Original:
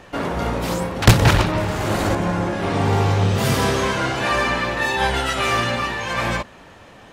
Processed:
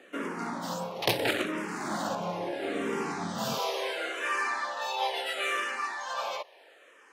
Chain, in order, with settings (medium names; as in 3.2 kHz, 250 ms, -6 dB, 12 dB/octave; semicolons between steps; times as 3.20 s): high-pass 200 Hz 24 dB/octave, from 3.58 s 430 Hz; barber-pole phaser -0.74 Hz; trim -7 dB